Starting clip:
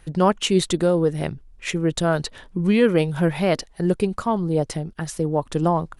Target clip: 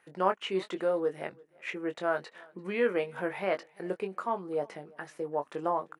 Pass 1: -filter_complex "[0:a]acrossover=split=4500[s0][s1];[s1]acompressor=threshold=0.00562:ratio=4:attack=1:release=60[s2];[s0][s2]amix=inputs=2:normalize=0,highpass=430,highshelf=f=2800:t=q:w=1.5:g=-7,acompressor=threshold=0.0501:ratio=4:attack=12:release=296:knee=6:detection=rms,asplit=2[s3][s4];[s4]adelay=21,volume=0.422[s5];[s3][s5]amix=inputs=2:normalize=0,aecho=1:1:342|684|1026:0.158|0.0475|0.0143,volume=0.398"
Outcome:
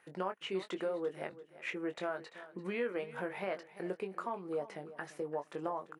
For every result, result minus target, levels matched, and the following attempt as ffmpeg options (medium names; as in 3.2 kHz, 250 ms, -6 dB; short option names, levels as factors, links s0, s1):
compression: peak gain reduction +12 dB; echo-to-direct +10 dB
-filter_complex "[0:a]acrossover=split=4500[s0][s1];[s1]acompressor=threshold=0.00562:ratio=4:attack=1:release=60[s2];[s0][s2]amix=inputs=2:normalize=0,highpass=430,highshelf=f=2800:t=q:w=1.5:g=-7,asplit=2[s3][s4];[s4]adelay=21,volume=0.422[s5];[s3][s5]amix=inputs=2:normalize=0,aecho=1:1:342|684|1026:0.158|0.0475|0.0143,volume=0.398"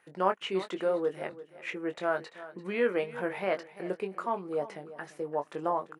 echo-to-direct +10 dB
-filter_complex "[0:a]acrossover=split=4500[s0][s1];[s1]acompressor=threshold=0.00562:ratio=4:attack=1:release=60[s2];[s0][s2]amix=inputs=2:normalize=0,highpass=430,highshelf=f=2800:t=q:w=1.5:g=-7,asplit=2[s3][s4];[s4]adelay=21,volume=0.422[s5];[s3][s5]amix=inputs=2:normalize=0,aecho=1:1:342|684:0.0501|0.015,volume=0.398"